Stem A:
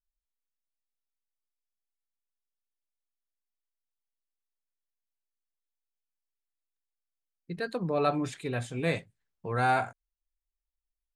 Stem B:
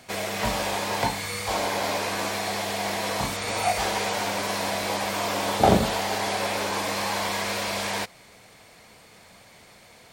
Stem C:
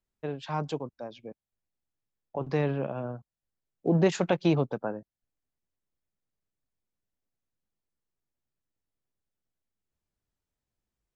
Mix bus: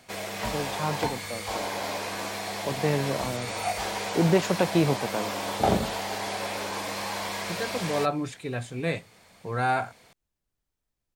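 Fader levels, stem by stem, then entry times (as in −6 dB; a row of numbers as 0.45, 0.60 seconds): +0.5, −5.0, +1.5 decibels; 0.00, 0.00, 0.30 seconds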